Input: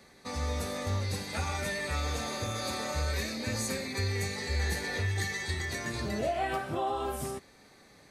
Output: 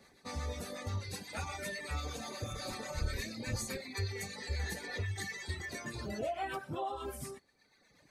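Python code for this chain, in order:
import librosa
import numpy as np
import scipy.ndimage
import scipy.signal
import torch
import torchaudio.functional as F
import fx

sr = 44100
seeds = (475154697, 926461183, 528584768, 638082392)

y = fx.octave_divider(x, sr, octaves=1, level_db=-1.0, at=(2.5, 3.78))
y = fx.dereverb_blind(y, sr, rt60_s=1.4)
y = fx.harmonic_tremolo(y, sr, hz=8.2, depth_pct=50, crossover_hz=790.0)
y = y * 10.0 ** (-2.0 / 20.0)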